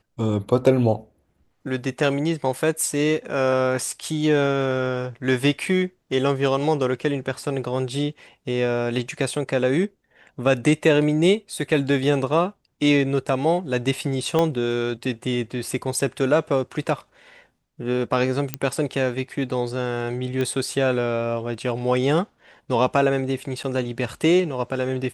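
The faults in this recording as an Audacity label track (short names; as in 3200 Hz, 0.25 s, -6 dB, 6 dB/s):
14.390000	14.390000	pop -9 dBFS
18.540000	18.540000	pop -8 dBFS
20.410000	20.410000	pop -14 dBFS
21.540000	21.540000	gap 2 ms
23.630000	23.640000	gap 7.1 ms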